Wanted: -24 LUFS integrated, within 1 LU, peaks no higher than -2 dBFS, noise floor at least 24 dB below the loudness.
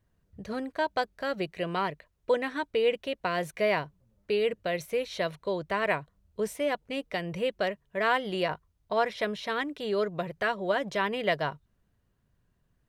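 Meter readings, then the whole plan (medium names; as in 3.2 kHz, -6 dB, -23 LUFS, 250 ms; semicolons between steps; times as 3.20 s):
loudness -30.5 LUFS; peak level -13.5 dBFS; loudness target -24.0 LUFS
-> trim +6.5 dB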